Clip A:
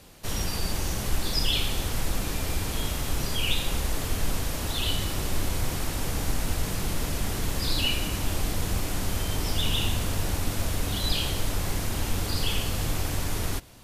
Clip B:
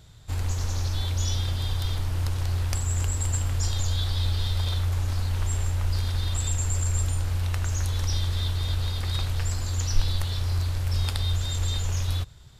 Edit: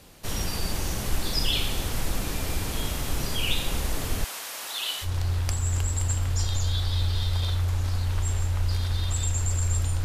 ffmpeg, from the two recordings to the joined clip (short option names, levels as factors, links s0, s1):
-filter_complex "[0:a]asettb=1/sr,asplit=3[s0][s1][s2];[s0]atrim=end=4.244[s3];[s1]atrim=start=4.24:end=5.09,asetpts=PTS-STARTPTS,afade=t=in:d=0.004:c=qsin,afade=t=out:st=0.846:d=0.004:c=qsin,highpass=860[s4];[s2]atrim=start=5.086[s5];[s3][s4]acrossfade=d=0.004:c1=hsin:c2=qsin[s6];[s6][s5]acrossfade=d=0.004:c1=qsin:c2=hsin,apad=whole_dur=10.04,atrim=end=10.04,atrim=end=5.09,asetpts=PTS-STARTPTS[s7];[1:a]atrim=start=2.25:end=7.28,asetpts=PTS-STARTPTS[s8];[s7][s8]acrossfade=d=0.08:c1=tri:c2=tri"